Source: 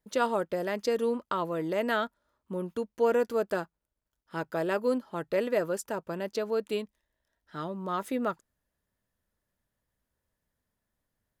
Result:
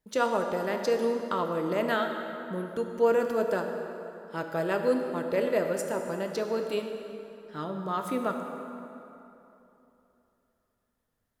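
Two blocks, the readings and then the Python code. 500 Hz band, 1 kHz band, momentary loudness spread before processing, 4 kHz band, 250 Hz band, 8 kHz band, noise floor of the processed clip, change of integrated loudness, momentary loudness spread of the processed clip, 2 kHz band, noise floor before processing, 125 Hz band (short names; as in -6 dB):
+2.0 dB, +2.0 dB, 10 LU, +1.0 dB, +1.5 dB, +1.0 dB, -78 dBFS, +1.0 dB, 13 LU, +1.5 dB, -85 dBFS, +2.0 dB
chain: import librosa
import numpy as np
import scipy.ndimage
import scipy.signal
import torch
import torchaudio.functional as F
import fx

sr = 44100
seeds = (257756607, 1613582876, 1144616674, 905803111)

y = fx.rev_plate(x, sr, seeds[0], rt60_s=3.1, hf_ratio=0.65, predelay_ms=0, drr_db=4.0)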